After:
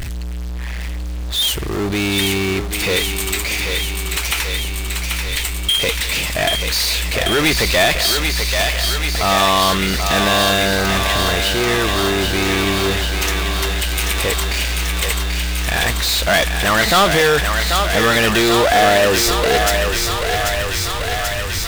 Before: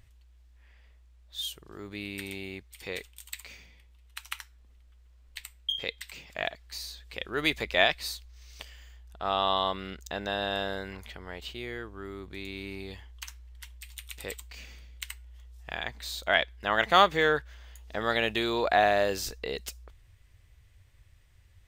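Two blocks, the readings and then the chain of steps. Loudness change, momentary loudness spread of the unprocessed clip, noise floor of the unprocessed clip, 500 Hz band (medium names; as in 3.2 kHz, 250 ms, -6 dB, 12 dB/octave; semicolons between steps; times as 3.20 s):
+14.0 dB, 21 LU, -58 dBFS, +13.5 dB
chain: power-law waveshaper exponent 0.35; thinning echo 787 ms, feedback 82%, high-pass 450 Hz, level -4.5 dB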